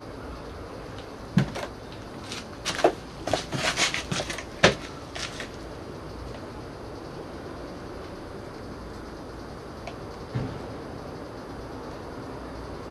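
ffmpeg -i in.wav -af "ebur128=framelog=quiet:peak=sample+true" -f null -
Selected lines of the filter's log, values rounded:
Integrated loudness:
  I:         -31.6 LUFS
  Threshold: -41.6 LUFS
Loudness range:
  LRA:        12.4 LU
  Threshold: -51.0 LUFS
  LRA low:   -39.0 LUFS
  LRA high:  -26.7 LUFS
Sample peak:
  Peak:       -2.1 dBFS
True peak:
  Peak:       -2.0 dBFS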